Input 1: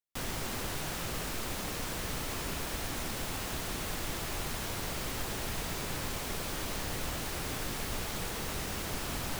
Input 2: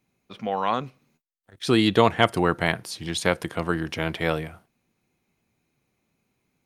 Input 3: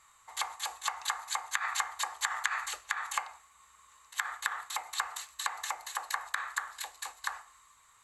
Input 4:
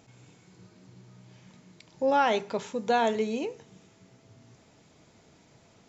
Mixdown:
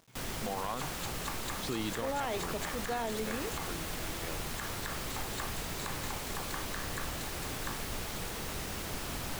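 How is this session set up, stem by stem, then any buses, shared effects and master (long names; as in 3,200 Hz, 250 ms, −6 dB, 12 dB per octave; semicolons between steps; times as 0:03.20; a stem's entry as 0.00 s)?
−2.0 dB, 0.00 s, no send, no processing
0:01.56 −8.5 dB → 0:02.21 −20 dB, 0.00 s, no send, no processing
−9.0 dB, 0.40 s, no send, level that may fall only so fast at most 140 dB per second
−6.5 dB, 0.00 s, no send, no processing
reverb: not used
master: bit reduction 10 bits; brickwall limiter −25 dBFS, peak gain reduction 8 dB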